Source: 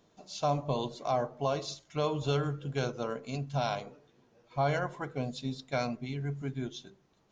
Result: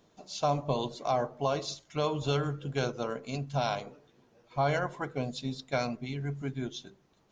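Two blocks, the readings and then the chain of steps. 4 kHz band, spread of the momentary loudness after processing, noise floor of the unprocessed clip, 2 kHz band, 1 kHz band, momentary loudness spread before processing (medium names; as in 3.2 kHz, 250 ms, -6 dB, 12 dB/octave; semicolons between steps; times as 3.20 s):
+2.0 dB, 8 LU, -67 dBFS, +2.0 dB, +1.5 dB, 8 LU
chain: harmonic-percussive split percussive +3 dB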